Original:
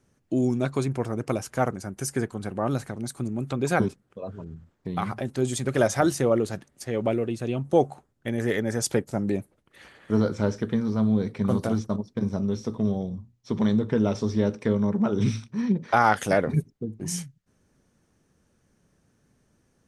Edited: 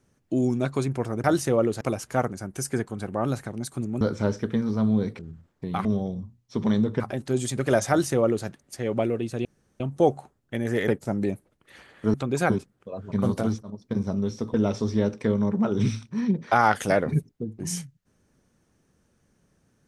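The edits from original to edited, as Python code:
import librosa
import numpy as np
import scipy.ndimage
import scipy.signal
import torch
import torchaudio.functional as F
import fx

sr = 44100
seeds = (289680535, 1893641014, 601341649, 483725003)

y = fx.edit(x, sr, fx.swap(start_s=3.44, length_s=0.98, other_s=10.2, other_length_s=1.18),
    fx.duplicate(start_s=5.97, length_s=0.57, to_s=1.24),
    fx.insert_room_tone(at_s=7.53, length_s=0.35),
    fx.cut(start_s=8.61, length_s=0.33),
    fx.fade_in_from(start_s=11.89, length_s=0.26, floor_db=-21.0),
    fx.move(start_s=12.8, length_s=1.15, to_s=5.08), tone=tone)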